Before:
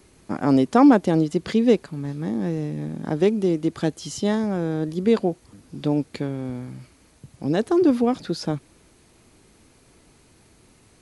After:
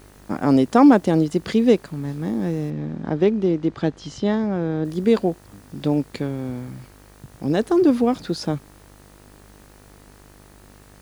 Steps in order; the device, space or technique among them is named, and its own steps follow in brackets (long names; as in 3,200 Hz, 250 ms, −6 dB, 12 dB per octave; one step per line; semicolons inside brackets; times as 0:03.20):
video cassette with head-switching buzz (hum with harmonics 50 Hz, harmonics 39, −51 dBFS −4 dB per octave; white noise bed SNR 37 dB)
0:02.70–0:04.85: high-frequency loss of the air 140 metres
level +1.5 dB